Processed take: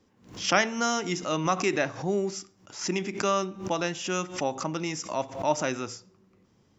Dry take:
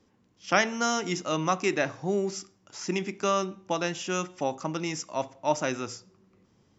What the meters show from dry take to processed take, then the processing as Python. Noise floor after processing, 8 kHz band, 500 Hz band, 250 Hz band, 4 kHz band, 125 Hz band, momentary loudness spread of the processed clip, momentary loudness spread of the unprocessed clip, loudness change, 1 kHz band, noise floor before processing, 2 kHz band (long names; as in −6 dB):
−64 dBFS, can't be measured, +0.5 dB, +0.5 dB, +2.0 dB, +1.0 dB, 10 LU, 10 LU, +0.5 dB, +0.5 dB, −66 dBFS, +0.5 dB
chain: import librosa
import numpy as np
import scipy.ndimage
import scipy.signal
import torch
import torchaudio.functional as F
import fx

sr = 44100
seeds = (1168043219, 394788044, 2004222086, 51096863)

y = fx.pre_swell(x, sr, db_per_s=120.0)